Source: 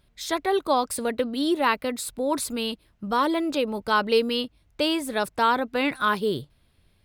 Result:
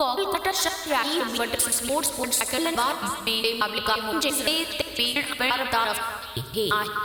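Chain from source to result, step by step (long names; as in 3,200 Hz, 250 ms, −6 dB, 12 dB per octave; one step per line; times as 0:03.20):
slices reordered back to front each 172 ms, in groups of 5
high-pass filter 46 Hz
spectral tilt +2.5 dB per octave
notch filter 490 Hz, Q 12
downward compressor, threshold −27 dBFS, peak gain reduction 11 dB
steady tone 14,000 Hz −57 dBFS
low shelf with overshoot 130 Hz +13 dB, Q 1.5
echo through a band-pass that steps 246 ms, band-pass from 1,300 Hz, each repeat 1.4 octaves, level −5 dB
convolution reverb RT60 1.7 s, pre-delay 66 ms, DRR 8 dB
level +6.5 dB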